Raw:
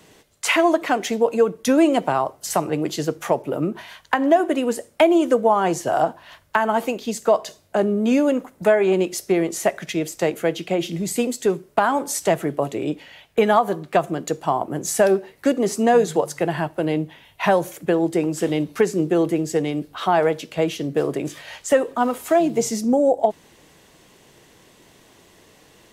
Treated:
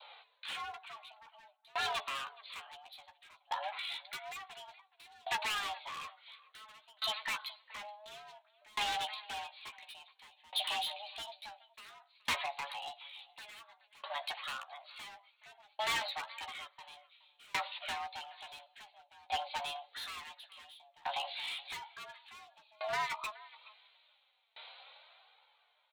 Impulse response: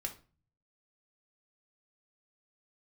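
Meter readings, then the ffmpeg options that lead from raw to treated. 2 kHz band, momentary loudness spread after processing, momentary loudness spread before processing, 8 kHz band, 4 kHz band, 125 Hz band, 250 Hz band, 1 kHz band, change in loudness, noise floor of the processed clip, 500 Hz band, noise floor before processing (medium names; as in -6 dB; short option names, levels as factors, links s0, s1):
-12.5 dB, 21 LU, 8 LU, -20.5 dB, -5.0 dB, -35.0 dB, under -40 dB, -17.0 dB, -18.5 dB, -73 dBFS, -31.0 dB, -54 dBFS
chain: -filter_complex "[0:a]aemphasis=mode=production:type=75kf,aresample=8000,aeval=exprs='0.188*(abs(mod(val(0)/0.188+3,4)-2)-1)':c=same,aresample=44100,acompressor=threshold=0.00631:ratio=1.5,adynamicequalizer=threshold=0.00282:dfrequency=1400:dqfactor=2.4:tfrequency=1400:tqfactor=2.4:attack=5:release=100:ratio=0.375:range=2:mode=cutabove:tftype=bell,acrossover=split=1600[s0][s1];[s1]dynaudnorm=f=120:g=31:m=3.98[s2];[s0][s2]amix=inputs=2:normalize=0,afreqshift=420,flanger=delay=2.1:depth=2.5:regen=-22:speed=0.55:shape=triangular,highpass=740,asplit=2[s3][s4];[s4]adelay=422,lowpass=f=2700:p=1,volume=0.211,asplit=2[s5][s6];[s6]adelay=422,lowpass=f=2700:p=1,volume=0.17[s7];[s3][s5][s7]amix=inputs=3:normalize=0,volume=33.5,asoftclip=hard,volume=0.0299,asplit=2[s8][s9];[s9]adelay=13,volume=0.422[s10];[s8][s10]amix=inputs=2:normalize=0,aeval=exprs='val(0)*pow(10,-30*if(lt(mod(0.57*n/s,1),2*abs(0.57)/1000),1-mod(0.57*n/s,1)/(2*abs(0.57)/1000),(mod(0.57*n/s,1)-2*abs(0.57)/1000)/(1-2*abs(0.57)/1000))/20)':c=same,volume=1.19"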